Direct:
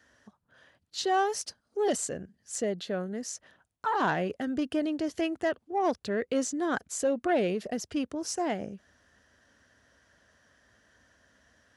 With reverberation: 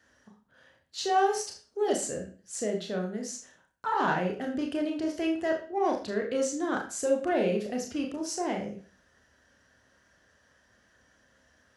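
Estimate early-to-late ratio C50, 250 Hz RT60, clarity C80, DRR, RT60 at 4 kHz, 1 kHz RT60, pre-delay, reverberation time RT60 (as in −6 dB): 8.0 dB, 0.40 s, 12.5 dB, 1.0 dB, 0.40 s, 0.40 s, 28 ms, 0.40 s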